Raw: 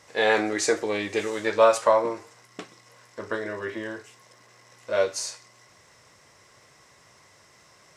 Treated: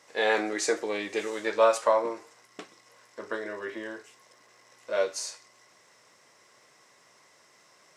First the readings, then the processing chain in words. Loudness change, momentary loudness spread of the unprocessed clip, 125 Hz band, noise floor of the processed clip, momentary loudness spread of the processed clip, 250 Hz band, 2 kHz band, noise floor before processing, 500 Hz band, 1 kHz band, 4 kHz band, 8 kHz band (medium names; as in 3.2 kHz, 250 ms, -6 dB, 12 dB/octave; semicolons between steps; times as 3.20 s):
-3.5 dB, 21 LU, under -10 dB, -61 dBFS, 21 LU, -4.5 dB, -3.5 dB, -57 dBFS, -3.5 dB, -3.5 dB, -3.5 dB, -3.5 dB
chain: high-pass 220 Hz 12 dB/octave; trim -3.5 dB